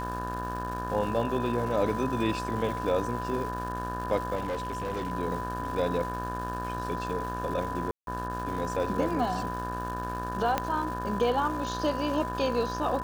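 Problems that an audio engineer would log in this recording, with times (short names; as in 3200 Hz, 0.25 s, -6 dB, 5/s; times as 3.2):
buzz 60 Hz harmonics 30 -36 dBFS
crackle 570/s -38 dBFS
tone 1000 Hz -34 dBFS
4.35–5.12 clipped -28 dBFS
7.91–8.07 gap 0.162 s
10.58 pop -12 dBFS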